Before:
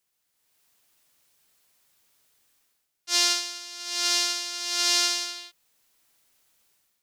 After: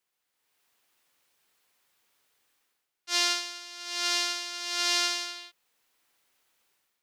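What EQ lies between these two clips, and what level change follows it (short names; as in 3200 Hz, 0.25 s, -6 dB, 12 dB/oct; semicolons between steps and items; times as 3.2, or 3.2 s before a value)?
tone controls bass -8 dB, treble -7 dB; notch 630 Hz, Q 12; 0.0 dB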